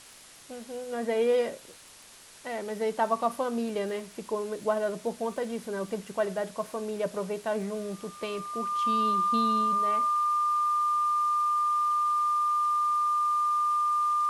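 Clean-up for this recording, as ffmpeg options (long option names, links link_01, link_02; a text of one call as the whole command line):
ffmpeg -i in.wav -af "adeclick=threshold=4,bandreject=frequency=1200:width=30,afwtdn=0.0035" out.wav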